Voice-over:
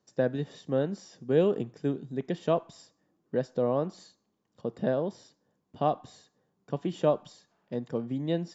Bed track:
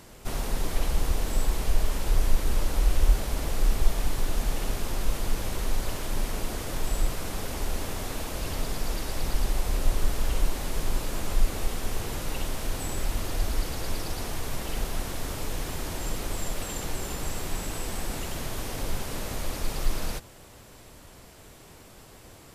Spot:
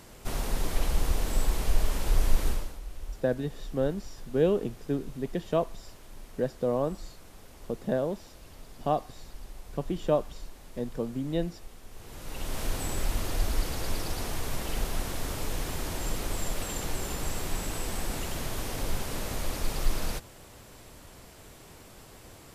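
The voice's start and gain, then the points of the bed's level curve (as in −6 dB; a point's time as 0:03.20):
3.05 s, −0.5 dB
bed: 0:02.48 −1 dB
0:02.80 −18 dB
0:11.89 −18 dB
0:12.59 −0.5 dB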